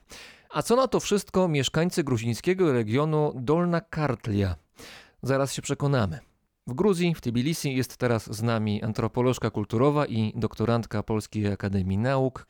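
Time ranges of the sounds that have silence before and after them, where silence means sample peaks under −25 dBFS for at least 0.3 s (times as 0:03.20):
0:00.55–0:04.53
0:05.24–0:06.11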